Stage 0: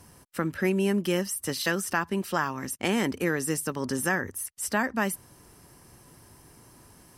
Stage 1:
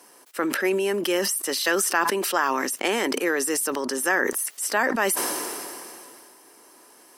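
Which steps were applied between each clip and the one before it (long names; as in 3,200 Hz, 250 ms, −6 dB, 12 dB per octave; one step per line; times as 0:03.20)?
high-pass filter 320 Hz 24 dB per octave
level that may fall only so fast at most 23 dB per second
level +4 dB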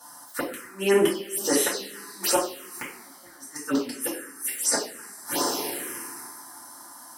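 gate with flip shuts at −14 dBFS, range −32 dB
coupled-rooms reverb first 0.47 s, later 4.1 s, from −22 dB, DRR −8 dB
phaser swept by the level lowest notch 380 Hz, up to 4,600 Hz, full sweep at −15.5 dBFS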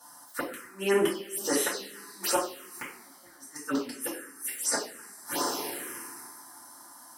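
dynamic equaliser 1,300 Hz, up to +4 dB, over −43 dBFS, Q 1.3
level −5 dB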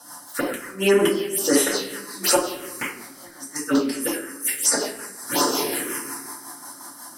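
rotating-speaker cabinet horn 5.5 Hz
rectangular room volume 270 cubic metres, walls mixed, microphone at 0.33 metres
in parallel at +2.5 dB: downward compressor, threshold −31 dBFS, peak gain reduction 9 dB
on the sum: level +5.5 dB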